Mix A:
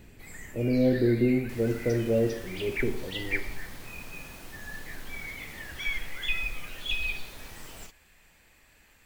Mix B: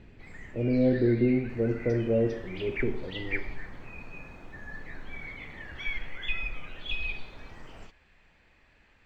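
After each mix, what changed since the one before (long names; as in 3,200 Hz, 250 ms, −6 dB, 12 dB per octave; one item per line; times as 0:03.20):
second sound: add Butterworth band-reject 3,400 Hz, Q 0.63
master: add high-frequency loss of the air 200 metres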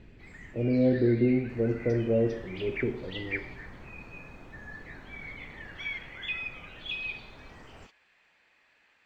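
first sound: add high-pass filter 850 Hz 6 dB per octave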